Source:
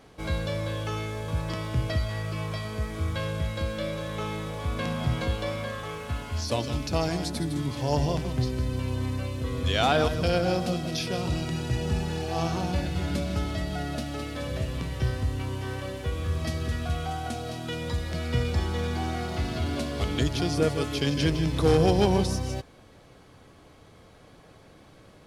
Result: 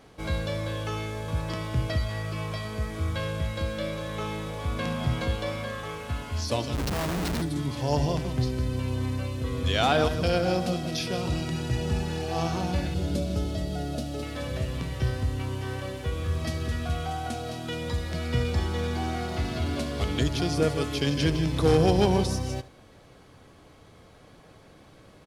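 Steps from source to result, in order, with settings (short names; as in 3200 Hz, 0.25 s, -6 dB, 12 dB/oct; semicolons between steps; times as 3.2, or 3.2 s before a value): 6.75–7.42 Schmitt trigger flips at -33 dBFS; 12.94–14.23 graphic EQ 500/1000/2000 Hz +5/-7/-8 dB; echo 71 ms -17.5 dB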